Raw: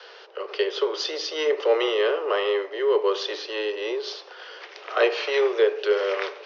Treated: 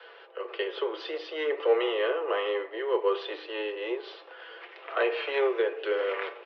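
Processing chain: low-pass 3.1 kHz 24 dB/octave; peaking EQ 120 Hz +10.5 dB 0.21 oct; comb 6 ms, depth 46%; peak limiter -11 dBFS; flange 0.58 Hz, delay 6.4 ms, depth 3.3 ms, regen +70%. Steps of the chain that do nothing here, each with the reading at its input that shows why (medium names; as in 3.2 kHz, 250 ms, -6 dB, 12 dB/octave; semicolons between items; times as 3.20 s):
peaking EQ 120 Hz: input has nothing below 300 Hz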